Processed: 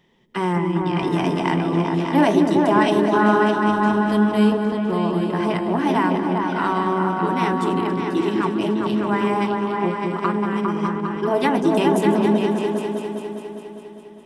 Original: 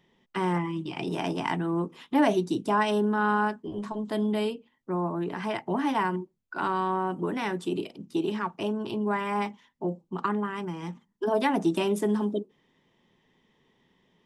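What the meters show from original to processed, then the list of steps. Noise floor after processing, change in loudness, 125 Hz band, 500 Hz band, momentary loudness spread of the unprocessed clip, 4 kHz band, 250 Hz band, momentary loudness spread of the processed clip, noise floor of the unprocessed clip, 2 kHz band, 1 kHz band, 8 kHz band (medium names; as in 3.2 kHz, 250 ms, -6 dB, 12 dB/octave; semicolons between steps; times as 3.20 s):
-39 dBFS, +9.0 dB, +10.0 dB, +9.0 dB, 10 LU, +7.0 dB, +10.0 dB, 7 LU, -71 dBFS, +7.5 dB, +8.0 dB, no reading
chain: backward echo that repeats 137 ms, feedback 71%, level -14 dB; delay with an opening low-pass 202 ms, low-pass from 400 Hz, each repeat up 2 oct, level 0 dB; trim +5 dB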